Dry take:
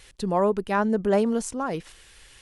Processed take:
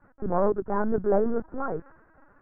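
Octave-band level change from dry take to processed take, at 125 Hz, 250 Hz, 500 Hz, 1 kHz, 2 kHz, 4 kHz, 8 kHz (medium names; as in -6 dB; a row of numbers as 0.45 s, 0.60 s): -3.5 dB, -4.5 dB, -1.5 dB, -3.5 dB, -7.5 dB, under -40 dB, under -40 dB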